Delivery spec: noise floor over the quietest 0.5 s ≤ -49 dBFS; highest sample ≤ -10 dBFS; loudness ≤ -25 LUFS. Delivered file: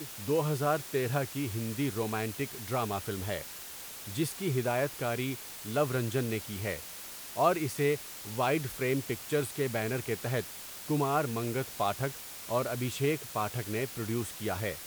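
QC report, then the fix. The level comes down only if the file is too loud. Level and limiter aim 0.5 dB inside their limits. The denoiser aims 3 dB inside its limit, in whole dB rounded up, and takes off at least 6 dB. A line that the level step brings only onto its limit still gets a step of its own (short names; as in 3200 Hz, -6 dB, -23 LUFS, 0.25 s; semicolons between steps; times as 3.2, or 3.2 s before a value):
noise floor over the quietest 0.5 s -44 dBFS: fail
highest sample -12.0 dBFS: OK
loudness -32.5 LUFS: OK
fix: denoiser 8 dB, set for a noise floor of -44 dBFS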